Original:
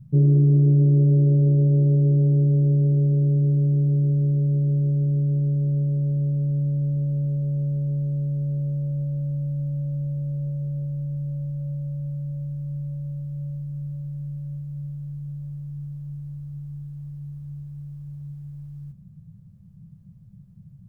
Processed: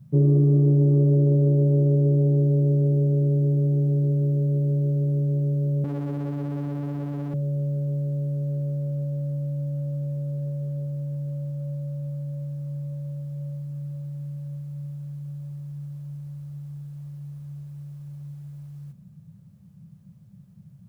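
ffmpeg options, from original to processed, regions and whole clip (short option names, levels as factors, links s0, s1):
-filter_complex "[0:a]asettb=1/sr,asplit=3[s0][s1][s2];[s0]atrim=end=5.844[s3];[s1]atrim=start=5.84:end=7.34,asetpts=PTS-STARTPTS,afade=t=in:d=0.004:c=qsin,afade=t=out:st=1.496:d=0.004:c=qsin,aecho=1:1:2.5:0.92,atrim=end_sample=66150,aeval=exprs='clip(val(0),-1,0.00944)':c=same[s4];[s2]atrim=start=7.336[s5];[s3][s4]acrossfade=d=0.004:c1=hsin:c2=qsin[s6];[s6][s5]acrossfade=d=0.004:c1=qsin:c2=hsin,highpass=f=380:p=1,acontrast=87"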